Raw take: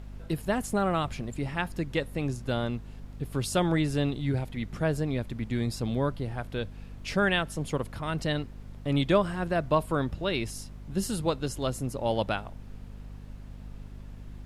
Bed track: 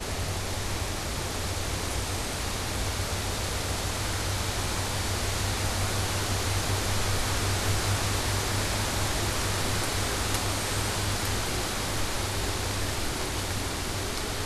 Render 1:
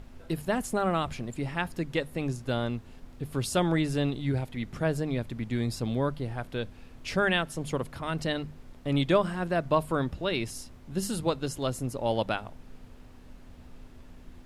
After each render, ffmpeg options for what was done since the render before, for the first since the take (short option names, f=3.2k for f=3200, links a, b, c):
-af "bandreject=f=50:t=h:w=6,bandreject=f=100:t=h:w=6,bandreject=f=150:t=h:w=6,bandreject=f=200:t=h:w=6"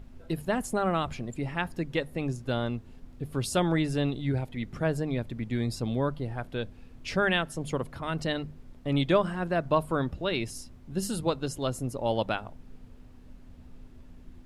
-af "afftdn=nr=6:nf=-50"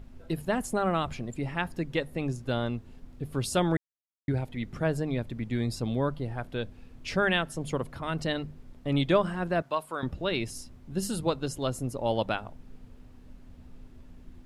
-filter_complex "[0:a]asettb=1/sr,asplit=3[a][b][c];[a]atrim=end=9.624[d];[b]atrim=start=9.62:end=10.03,asetpts=PTS-STARTPTS,afade=t=in:d=0.004:c=qsin,afade=t=out:st=0.406:d=0.004:c=qsin,highpass=f=1.1k:p=1[e];[c]atrim=start=10.026[f];[d][e]acrossfade=d=0.004:c1=hsin:c2=qsin[g];[g][f]acrossfade=d=0.004:c1=qsin:c2=hsin,asplit=3[h][i][j];[h]atrim=end=3.77,asetpts=PTS-STARTPTS,afade=t=out:st=3.766:d=0.004:c=hsin[k];[i]atrim=start=3.77:end=4.28,asetpts=PTS-STARTPTS,volume=0[l];[j]atrim=start=4.28,asetpts=PTS-STARTPTS,afade=t=in:d=0.004:c=hsin[m];[k][l][m]concat=n=3:v=0:a=1"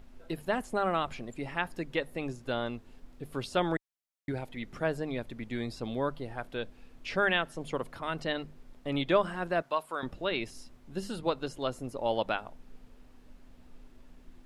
-filter_complex "[0:a]acrossover=split=4200[a][b];[b]acompressor=threshold=-53dB:ratio=4:attack=1:release=60[c];[a][c]amix=inputs=2:normalize=0,equalizer=f=88:w=0.46:g=-11.5"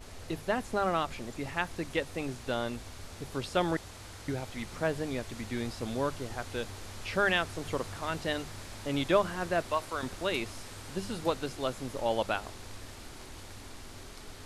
-filter_complex "[1:a]volume=-17dB[a];[0:a][a]amix=inputs=2:normalize=0"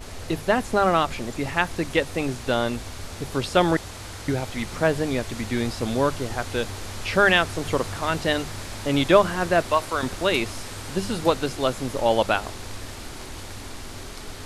-af "volume=9.5dB"